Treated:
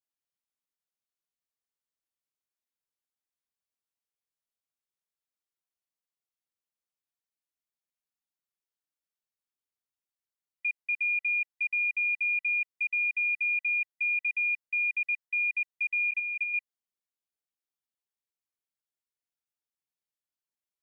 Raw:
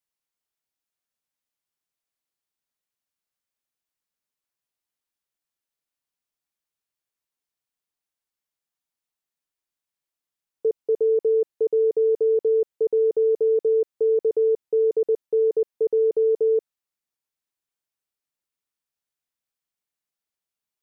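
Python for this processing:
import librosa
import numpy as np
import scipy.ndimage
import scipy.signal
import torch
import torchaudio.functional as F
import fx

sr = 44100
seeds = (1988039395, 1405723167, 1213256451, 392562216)

y = fx.band_swap(x, sr, width_hz=2000)
y = fx.doubler(y, sr, ms=27.0, db=-5.0, at=(16.09, 16.54))
y = y * 10.0 ** (-8.5 / 20.0)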